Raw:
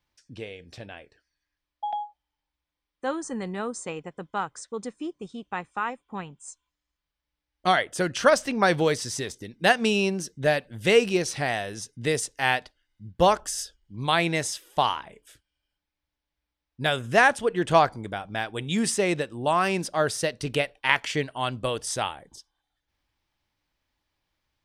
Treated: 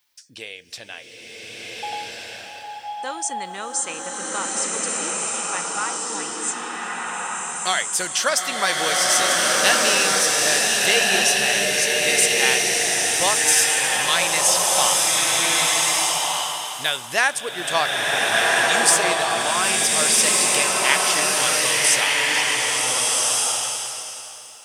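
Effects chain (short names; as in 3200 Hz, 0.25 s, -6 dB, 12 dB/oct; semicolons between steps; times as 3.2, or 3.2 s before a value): in parallel at +2 dB: compressor, threshold -34 dBFS, peak gain reduction 19.5 dB; on the sum: tilt +4.5 dB/oct; bloom reverb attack 1.49 s, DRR -5 dB; gain -4 dB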